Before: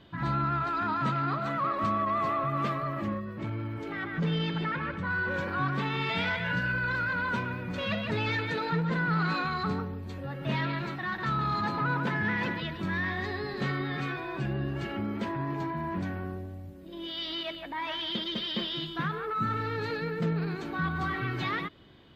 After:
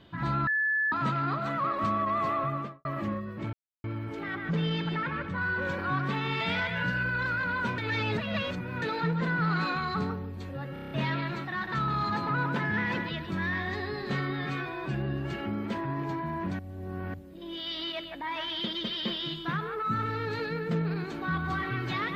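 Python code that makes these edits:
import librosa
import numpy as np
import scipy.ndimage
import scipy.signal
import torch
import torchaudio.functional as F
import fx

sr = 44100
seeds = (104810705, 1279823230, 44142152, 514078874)

y = fx.studio_fade_out(x, sr, start_s=2.44, length_s=0.41)
y = fx.edit(y, sr, fx.bleep(start_s=0.47, length_s=0.45, hz=1730.0, db=-24.0),
    fx.insert_silence(at_s=3.53, length_s=0.31),
    fx.reverse_span(start_s=7.47, length_s=1.04),
    fx.stutter(start_s=10.42, slice_s=0.03, count=7),
    fx.reverse_span(start_s=16.1, length_s=0.55), tone=tone)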